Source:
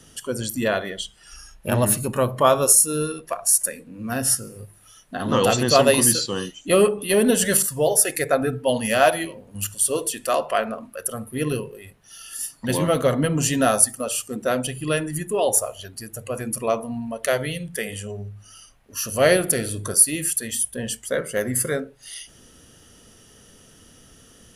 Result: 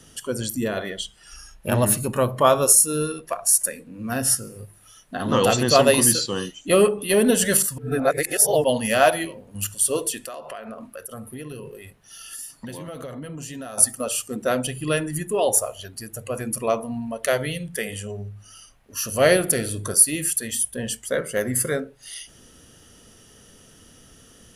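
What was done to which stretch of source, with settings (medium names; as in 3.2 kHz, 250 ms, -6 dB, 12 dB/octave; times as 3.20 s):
0.56–0.77 s: time-frequency box 480–5000 Hz -7 dB
7.78–8.64 s: reverse
10.18–13.78 s: compression 16:1, threshold -31 dBFS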